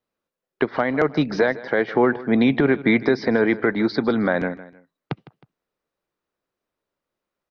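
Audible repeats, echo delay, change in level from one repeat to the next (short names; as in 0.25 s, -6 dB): 2, 0.157 s, -8.0 dB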